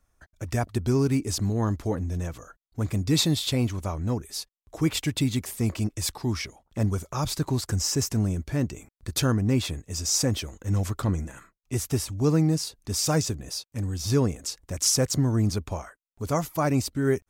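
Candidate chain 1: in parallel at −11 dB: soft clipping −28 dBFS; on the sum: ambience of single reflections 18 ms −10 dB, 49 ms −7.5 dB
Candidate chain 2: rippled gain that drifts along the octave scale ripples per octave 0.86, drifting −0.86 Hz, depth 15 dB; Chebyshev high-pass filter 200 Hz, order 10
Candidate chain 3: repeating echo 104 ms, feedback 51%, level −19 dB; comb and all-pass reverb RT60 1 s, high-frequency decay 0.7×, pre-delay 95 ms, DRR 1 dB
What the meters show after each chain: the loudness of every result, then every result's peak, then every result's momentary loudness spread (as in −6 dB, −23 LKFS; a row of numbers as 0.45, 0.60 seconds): −24.5, −27.0, −25.0 LKFS; −8.5, −7.0, −8.5 dBFS; 10, 13, 10 LU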